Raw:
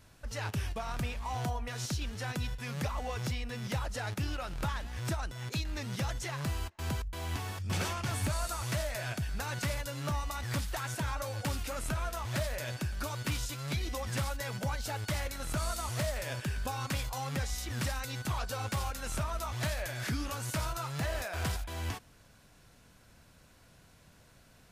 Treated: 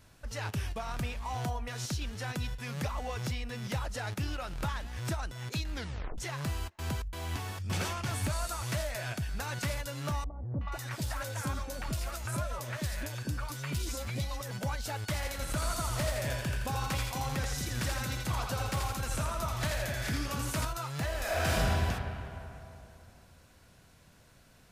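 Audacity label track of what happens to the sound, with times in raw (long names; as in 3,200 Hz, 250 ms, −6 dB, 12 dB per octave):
5.730000	5.730000	tape stop 0.45 s
10.240000	14.510000	three-band delay without the direct sound lows, mids, highs 370/480 ms, splits 680/3,000 Hz
15.140000	20.650000	echo with a time of its own for lows and highs split 430 Hz, lows 244 ms, highs 83 ms, level −4 dB
21.180000	21.680000	thrown reverb, RT60 2.9 s, DRR −7.5 dB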